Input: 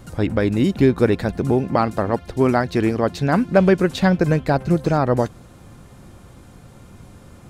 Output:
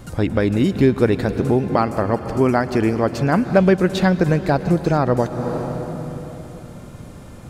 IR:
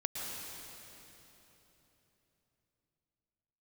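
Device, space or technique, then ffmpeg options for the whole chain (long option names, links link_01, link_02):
ducked reverb: -filter_complex "[0:a]asplit=3[link_01][link_02][link_03];[1:a]atrim=start_sample=2205[link_04];[link_02][link_04]afir=irnorm=-1:irlink=0[link_05];[link_03]apad=whole_len=330467[link_06];[link_05][link_06]sidechaincompress=threshold=-25dB:ratio=8:attack=34:release=339,volume=-3dB[link_07];[link_01][link_07]amix=inputs=2:normalize=0,asettb=1/sr,asplit=3[link_08][link_09][link_10];[link_08]atrim=end=1.794[link_11];[link_09]atrim=start=1.79:end=3.44,asetpts=PTS-STARTPTS,afade=type=in:duration=0.004:curve=qsin,afade=type=out:start_time=1.646:duration=0.004:curve=qsin,bandreject=frequency=3800:width=5.8[link_12];[link_10]atrim=start=3.436[link_13];[link_11][link_12]acrossfade=duration=0.004:curve1=hsin:curve2=qsin[link_14];[link_14][link_13]acrossfade=duration=0.004:curve1=qsin:curve2=hsin,volume=-1dB"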